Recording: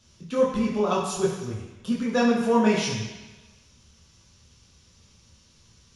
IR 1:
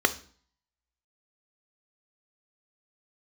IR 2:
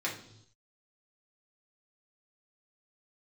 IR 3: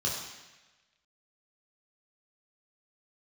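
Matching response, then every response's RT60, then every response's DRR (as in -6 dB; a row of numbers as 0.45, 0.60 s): 3; 0.50, 0.75, 1.1 s; 9.5, -4.5, -4.5 dB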